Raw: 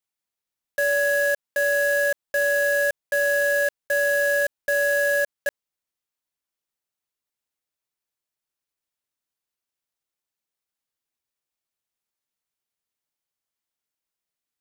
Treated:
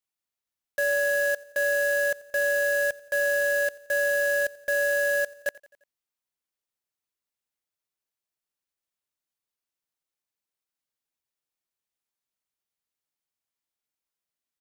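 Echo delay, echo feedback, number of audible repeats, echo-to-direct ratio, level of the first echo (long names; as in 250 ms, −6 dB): 87 ms, 55%, 3, −20.0 dB, −21.5 dB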